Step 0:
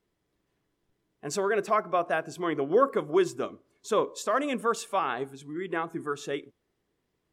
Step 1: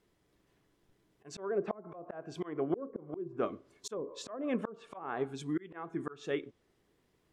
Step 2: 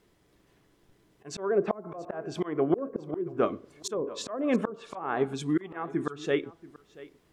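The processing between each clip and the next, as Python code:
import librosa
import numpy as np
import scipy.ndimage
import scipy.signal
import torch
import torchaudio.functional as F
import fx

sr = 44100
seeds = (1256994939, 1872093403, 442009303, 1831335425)

y1 = fx.env_lowpass_down(x, sr, base_hz=390.0, full_db=-20.5)
y1 = fx.auto_swell(y1, sr, attack_ms=506.0)
y1 = y1 * 10.0 ** (4.5 / 20.0)
y2 = y1 + 10.0 ** (-19.5 / 20.0) * np.pad(y1, (int(682 * sr / 1000.0), 0))[:len(y1)]
y2 = y2 * 10.0 ** (7.5 / 20.0)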